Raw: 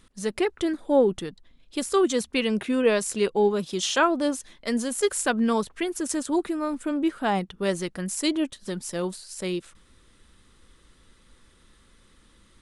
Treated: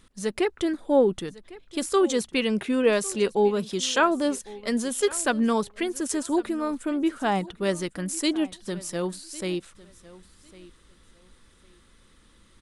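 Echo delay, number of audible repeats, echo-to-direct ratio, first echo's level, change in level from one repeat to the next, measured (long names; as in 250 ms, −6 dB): 1,103 ms, 2, −20.0 dB, −20.0 dB, −13.5 dB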